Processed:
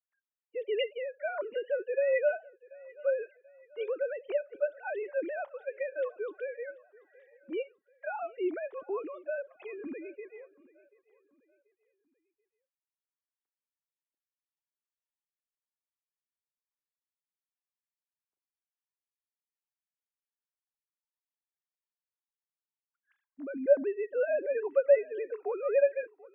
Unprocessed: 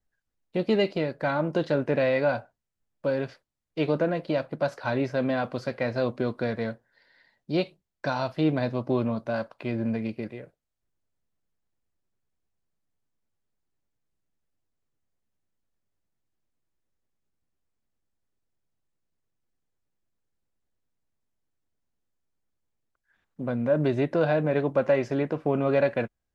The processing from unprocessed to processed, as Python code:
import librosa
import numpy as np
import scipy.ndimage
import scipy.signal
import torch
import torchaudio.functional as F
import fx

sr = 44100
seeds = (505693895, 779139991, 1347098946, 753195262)

p1 = fx.sine_speech(x, sr)
p2 = p1 + fx.echo_feedback(p1, sr, ms=735, feedback_pct=40, wet_db=-22.5, dry=0)
y = F.gain(torch.from_numpy(p2), -5.5).numpy()